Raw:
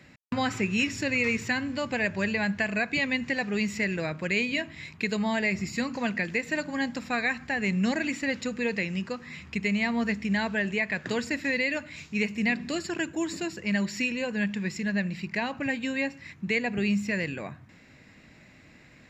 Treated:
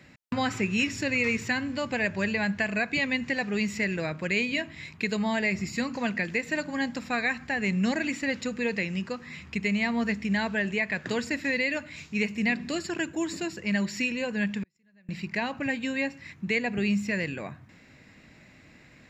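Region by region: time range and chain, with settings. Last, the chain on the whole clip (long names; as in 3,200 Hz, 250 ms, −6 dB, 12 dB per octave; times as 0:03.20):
0:14.63–0:15.09: gate with flip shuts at −28 dBFS, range −41 dB + multiband upward and downward compressor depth 100%
whole clip: no processing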